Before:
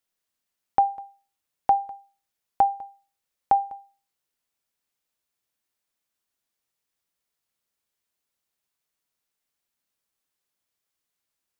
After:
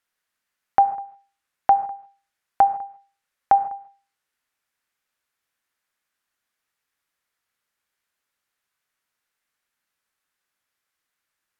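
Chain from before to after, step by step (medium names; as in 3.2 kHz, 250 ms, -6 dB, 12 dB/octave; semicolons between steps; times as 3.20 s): peaking EQ 1.6 kHz +10 dB 1.4 oct; gated-style reverb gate 180 ms flat, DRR 11.5 dB; low-pass that closes with the level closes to 1.8 kHz, closed at -21 dBFS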